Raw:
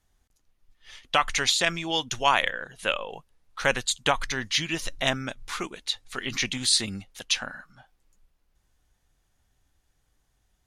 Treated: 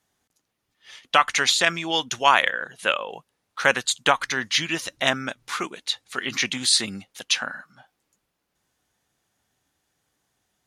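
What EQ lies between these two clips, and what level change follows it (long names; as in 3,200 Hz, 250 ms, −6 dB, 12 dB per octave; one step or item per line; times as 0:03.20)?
high-pass filter 160 Hz 12 dB per octave
dynamic equaliser 1,400 Hz, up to +4 dB, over −38 dBFS, Q 1.3
+2.5 dB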